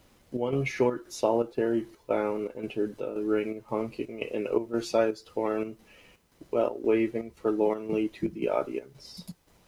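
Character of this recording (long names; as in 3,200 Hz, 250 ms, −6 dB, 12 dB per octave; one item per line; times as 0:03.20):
chopped level 1.9 Hz, depth 60%, duty 70%
a quantiser's noise floor 12 bits, dither triangular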